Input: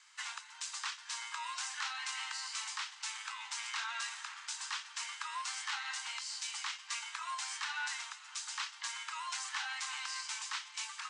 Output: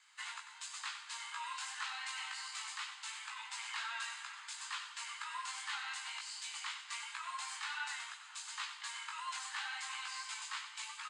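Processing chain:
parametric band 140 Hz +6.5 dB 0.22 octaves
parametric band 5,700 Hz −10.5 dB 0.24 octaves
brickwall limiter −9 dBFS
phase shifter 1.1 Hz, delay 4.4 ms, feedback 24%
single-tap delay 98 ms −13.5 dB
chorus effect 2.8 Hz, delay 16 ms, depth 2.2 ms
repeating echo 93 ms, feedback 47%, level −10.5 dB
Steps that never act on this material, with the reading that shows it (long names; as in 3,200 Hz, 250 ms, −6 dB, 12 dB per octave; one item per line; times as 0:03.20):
parametric band 140 Hz: nothing at its input below 680 Hz
brickwall limiter −9 dBFS: peak of its input −22.5 dBFS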